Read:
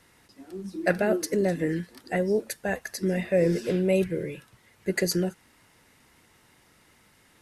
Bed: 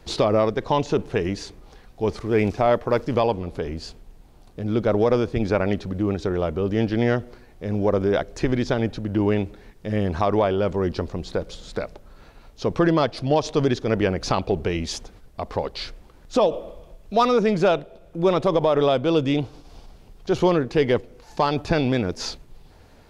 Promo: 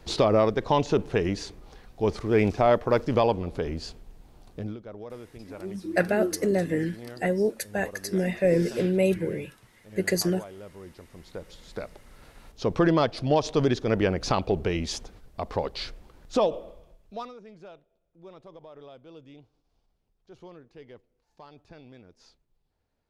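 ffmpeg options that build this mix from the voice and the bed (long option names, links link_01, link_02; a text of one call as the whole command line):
ffmpeg -i stem1.wav -i stem2.wav -filter_complex "[0:a]adelay=5100,volume=0.5dB[link_01];[1:a]volume=17.5dB,afade=type=out:start_time=4.55:duration=0.22:silence=0.1,afade=type=in:start_time=11.07:duration=1.44:silence=0.112202,afade=type=out:start_time=16.2:duration=1.14:silence=0.0530884[link_02];[link_01][link_02]amix=inputs=2:normalize=0" out.wav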